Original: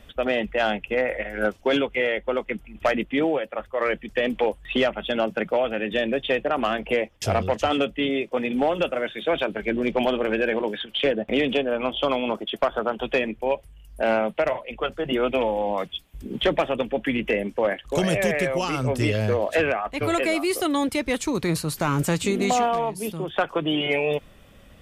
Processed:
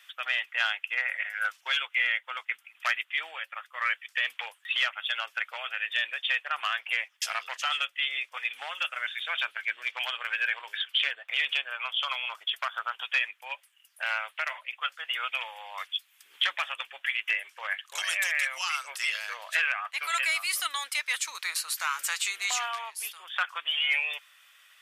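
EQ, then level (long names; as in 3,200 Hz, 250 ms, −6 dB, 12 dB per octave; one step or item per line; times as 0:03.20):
high-pass filter 1,300 Hz 24 dB per octave
+1.5 dB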